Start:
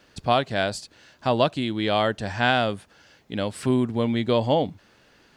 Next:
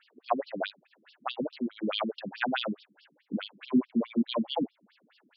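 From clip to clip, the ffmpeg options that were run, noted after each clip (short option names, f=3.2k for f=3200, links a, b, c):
-af "asubboost=boost=10.5:cutoff=130,afftfilt=real='re*between(b*sr/1024,240*pow(4100/240,0.5+0.5*sin(2*PI*4.7*pts/sr))/1.41,240*pow(4100/240,0.5+0.5*sin(2*PI*4.7*pts/sr))*1.41)':imag='im*between(b*sr/1024,240*pow(4100/240,0.5+0.5*sin(2*PI*4.7*pts/sr))/1.41,240*pow(4100/240,0.5+0.5*sin(2*PI*4.7*pts/sr))*1.41)':win_size=1024:overlap=0.75"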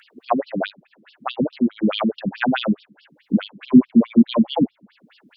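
-filter_complex "[0:a]bass=f=250:g=12,treble=f=4k:g=-7,acrossover=split=2200[a][b];[b]acompressor=mode=upward:threshold=-57dB:ratio=2.5[c];[a][c]amix=inputs=2:normalize=0,volume=7.5dB"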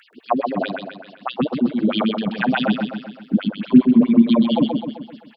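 -af "aecho=1:1:129|258|387|516|645|774|903:0.562|0.292|0.152|0.0791|0.0411|0.0214|0.0111"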